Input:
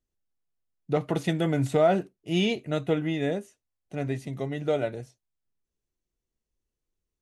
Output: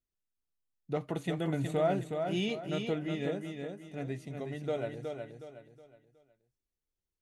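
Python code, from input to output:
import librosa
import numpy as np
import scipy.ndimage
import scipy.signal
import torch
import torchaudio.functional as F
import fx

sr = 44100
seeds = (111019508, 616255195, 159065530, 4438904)

y = fx.peak_eq(x, sr, hz=5200.0, db=-12.5, octaves=0.23, at=(1.12, 1.85))
y = fx.echo_feedback(y, sr, ms=367, feedback_pct=35, wet_db=-5.5)
y = y * librosa.db_to_amplitude(-8.0)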